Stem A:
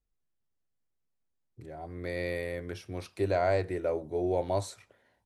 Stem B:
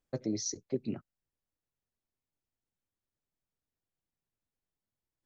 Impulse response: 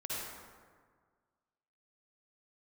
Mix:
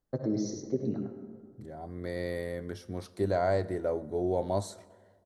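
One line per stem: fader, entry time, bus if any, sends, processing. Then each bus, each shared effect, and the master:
-1.0 dB, 0.00 s, send -21.5 dB, no echo send, peaking EQ 210 Hz +13.5 dB 0.28 oct
+0.5 dB, 0.00 s, send -4 dB, echo send -3.5 dB, low-pass 1.5 kHz 6 dB/octave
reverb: on, RT60 1.7 s, pre-delay 48 ms
echo: delay 101 ms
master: peaking EQ 2.5 kHz -14.5 dB 0.36 oct

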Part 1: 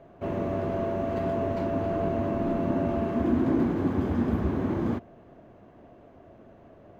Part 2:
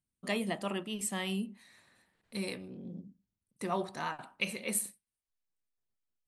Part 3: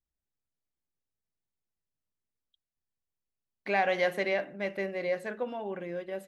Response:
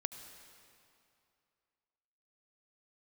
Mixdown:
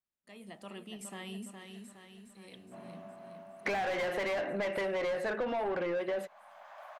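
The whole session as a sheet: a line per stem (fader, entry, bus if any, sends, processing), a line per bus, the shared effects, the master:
-9.0 dB, 2.50 s, no send, no echo send, steep high-pass 580 Hz 96 dB/octave; auto duck -11 dB, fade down 2.00 s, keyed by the third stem
-7.5 dB, 0.00 s, send -12 dB, echo send -4.5 dB, slow attack 749 ms; three bands compressed up and down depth 40%
+0.5 dB, 0.00 s, no send, no echo send, overdrive pedal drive 29 dB, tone 1.5 kHz, clips at -15 dBFS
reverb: on, RT60 2.6 s, pre-delay 68 ms
echo: feedback delay 415 ms, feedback 55%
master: gate with hold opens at -57 dBFS; compression 10:1, threshold -31 dBFS, peak gain reduction 11.5 dB

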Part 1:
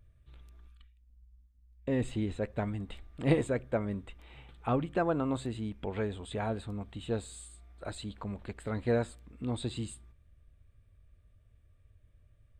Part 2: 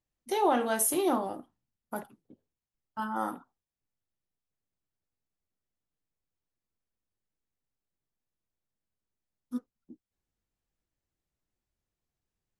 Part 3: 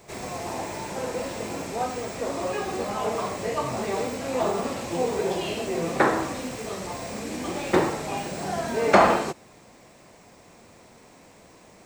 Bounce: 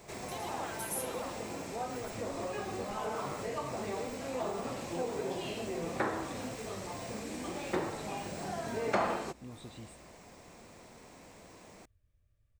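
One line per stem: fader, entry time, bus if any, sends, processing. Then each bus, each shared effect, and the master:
-10.0 dB, 0.00 s, bus A, no send, no echo send, none
-5.0 dB, 0.00 s, bus A, no send, echo send -5.5 dB, high-pass 990 Hz
-2.5 dB, 0.00 s, no bus, no send, no echo send, compression 1.5:1, threshold -45 dBFS, peak gain reduction 12 dB
bus A: 0.0 dB, compression, threshold -43 dBFS, peak gain reduction 13.5 dB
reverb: none
echo: delay 112 ms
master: none

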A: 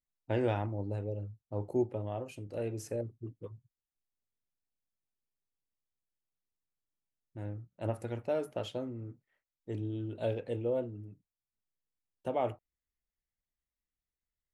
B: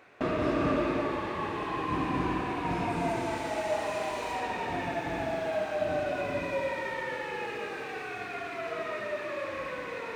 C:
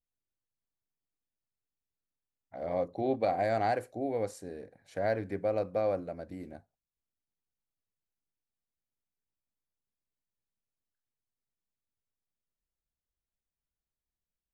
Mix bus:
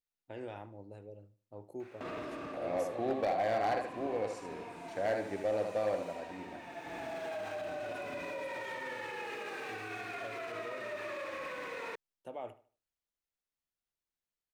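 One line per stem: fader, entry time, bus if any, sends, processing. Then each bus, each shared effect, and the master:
-9.0 dB, 0.00 s, bus A, no send, echo send -17.5 dB, none
-2.0 dB, 1.80 s, bus A, no send, no echo send, auto duck -13 dB, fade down 0.30 s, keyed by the third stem
-1.5 dB, 0.00 s, no bus, no send, echo send -6 dB, low-pass 6.5 kHz
bus A: 0.0 dB, treble shelf 7 kHz +5.5 dB; peak limiter -31.5 dBFS, peak gain reduction 11 dB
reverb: none
echo: feedback delay 75 ms, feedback 31%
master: bass shelf 170 Hz -12 dB; hard clipper -26 dBFS, distortion -19 dB

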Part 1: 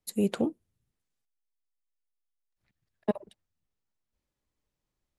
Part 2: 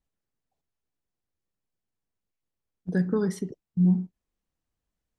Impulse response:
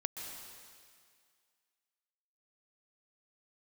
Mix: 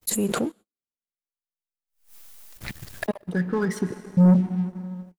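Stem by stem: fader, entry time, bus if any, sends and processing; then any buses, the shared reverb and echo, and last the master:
-7.0 dB, 0.00 s, send -23.5 dB, treble shelf 8.1 kHz +9.5 dB; swell ahead of each attack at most 20 dB/s
3.57 s -11.5 dB -> 4.04 s -0.5 dB, 0.40 s, send -4.5 dB, sweeping bell 4.1 Hz 860–2400 Hz +12 dB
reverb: on, RT60 2.0 s, pre-delay 117 ms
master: gate -49 dBFS, range -36 dB; waveshaping leveller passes 2

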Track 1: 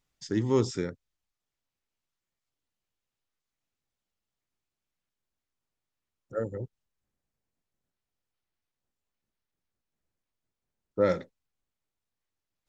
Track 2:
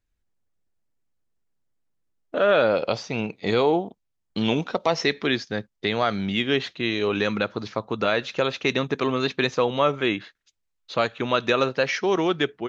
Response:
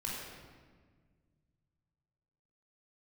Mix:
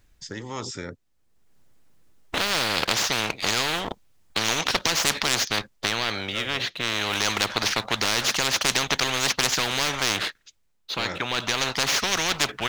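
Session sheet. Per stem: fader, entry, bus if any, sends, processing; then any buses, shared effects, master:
-14.5 dB, 0.00 s, no send, none
+2.0 dB, 0.00 s, no send, waveshaping leveller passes 1; auto duck -17 dB, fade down 0.80 s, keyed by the first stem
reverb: none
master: spectrum-flattening compressor 10:1

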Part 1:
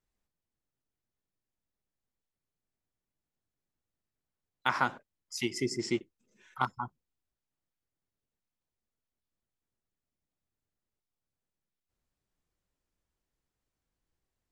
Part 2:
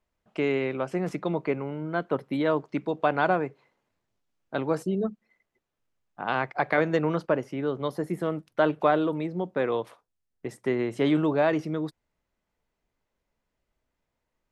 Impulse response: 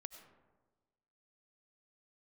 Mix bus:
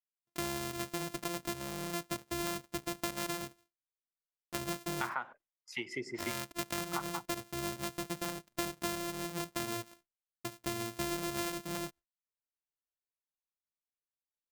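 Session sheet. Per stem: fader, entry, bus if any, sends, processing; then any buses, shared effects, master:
+3.0 dB, 0.35 s, no send, three-band isolator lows -13 dB, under 530 Hz, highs -24 dB, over 2.5 kHz
-6.0 dB, 0.00 s, no send, sorted samples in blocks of 128 samples; gate with hold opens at -55 dBFS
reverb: none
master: gate with hold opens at -54 dBFS; treble shelf 4.2 kHz +8.5 dB; compression 4:1, threshold -34 dBFS, peak gain reduction 12.5 dB

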